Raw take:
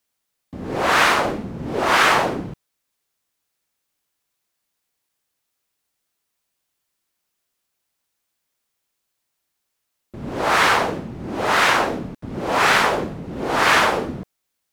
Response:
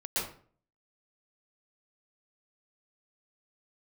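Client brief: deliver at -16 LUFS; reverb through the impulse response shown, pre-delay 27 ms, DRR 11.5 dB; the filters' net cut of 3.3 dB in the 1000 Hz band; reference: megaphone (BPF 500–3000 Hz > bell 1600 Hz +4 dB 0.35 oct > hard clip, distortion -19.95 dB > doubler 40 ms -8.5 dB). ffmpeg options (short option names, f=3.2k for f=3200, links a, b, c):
-filter_complex "[0:a]equalizer=f=1k:t=o:g=-4.5,asplit=2[a][b];[1:a]atrim=start_sample=2205,adelay=27[c];[b][c]afir=irnorm=-1:irlink=0,volume=-17.5dB[d];[a][d]amix=inputs=2:normalize=0,highpass=500,lowpass=3k,equalizer=f=1.6k:t=o:w=0.35:g=4,asoftclip=type=hard:threshold=-11dB,asplit=2[e][f];[f]adelay=40,volume=-8.5dB[g];[e][g]amix=inputs=2:normalize=0,volume=3.5dB"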